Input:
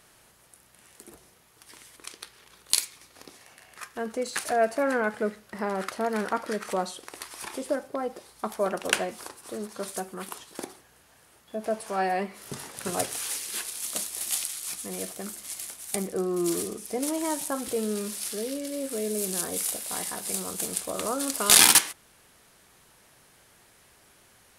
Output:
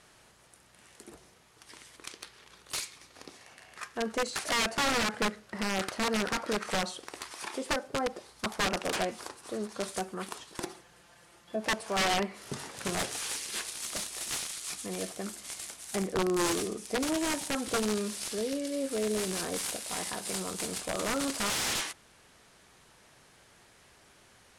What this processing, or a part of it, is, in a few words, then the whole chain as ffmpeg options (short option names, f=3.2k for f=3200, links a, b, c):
overflowing digital effects unit: -filter_complex "[0:a]asettb=1/sr,asplit=3[a][b][c];[a]atrim=end=7.334[d];[b]atrim=start=7.33:end=7.88,asetpts=PTS-STARTPTS,afade=t=in:d=0.004:c=qsin,afade=t=out:st=0.546:d=0.004:c=qsin,highpass=f=190:p=1[e];[c]atrim=start=7.876[f];[d][e]acrossfade=d=0.004:c1=hsin:c2=qsin[g];[g][f]acrossfade=d=0.004:c1=qsin:c2=hsin,asettb=1/sr,asplit=3[h][i][j];[h]atrim=end=10.604[k];[i]atrim=start=10.6:end=11.56,asetpts=PTS-STARTPTS,afade=t=in:d=0.004:c=qsin,afade=t=out:st=0.956:d=0.004:c=qsin,aecho=1:1:5.8:0.65,atrim=end_sample=42336[l];[j]atrim=start=11.556[m];[k][l]acrossfade=d=0.004:c1=hsin:c2=qsin[n];[n][m]acrossfade=d=0.004:c1=qsin:c2=hsin,aeval=exprs='(mod(12.6*val(0)+1,2)-1)/12.6':c=same,lowpass=8.2k"